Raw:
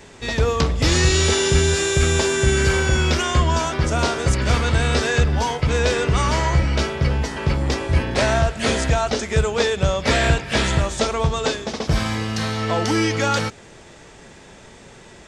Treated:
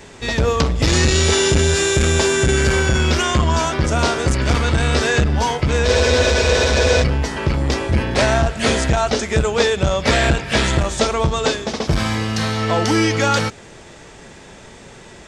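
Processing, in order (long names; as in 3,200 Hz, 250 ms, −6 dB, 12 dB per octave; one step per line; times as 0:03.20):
frozen spectrum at 0:05.87, 1.15 s
saturating transformer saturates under 250 Hz
level +3.5 dB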